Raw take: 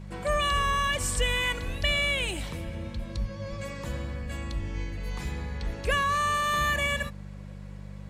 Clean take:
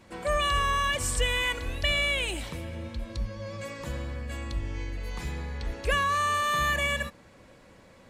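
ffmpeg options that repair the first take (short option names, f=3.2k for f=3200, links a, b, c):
-filter_complex "[0:a]bandreject=f=49.4:t=h:w=4,bandreject=f=98.8:t=h:w=4,bandreject=f=148.2:t=h:w=4,bandreject=f=197.6:t=h:w=4,asplit=3[a][b][c];[a]afade=t=out:st=2.64:d=0.02[d];[b]highpass=f=140:w=0.5412,highpass=f=140:w=1.3066,afade=t=in:st=2.64:d=0.02,afade=t=out:st=2.76:d=0.02[e];[c]afade=t=in:st=2.76:d=0.02[f];[d][e][f]amix=inputs=3:normalize=0,asplit=3[g][h][i];[g]afade=t=out:st=3.49:d=0.02[j];[h]highpass=f=140:w=0.5412,highpass=f=140:w=1.3066,afade=t=in:st=3.49:d=0.02,afade=t=out:st=3.61:d=0.02[k];[i]afade=t=in:st=3.61:d=0.02[l];[j][k][l]amix=inputs=3:normalize=0,asplit=3[m][n][o];[m]afade=t=out:st=4.21:d=0.02[p];[n]highpass=f=140:w=0.5412,highpass=f=140:w=1.3066,afade=t=in:st=4.21:d=0.02,afade=t=out:st=4.33:d=0.02[q];[o]afade=t=in:st=4.33:d=0.02[r];[p][q][r]amix=inputs=3:normalize=0"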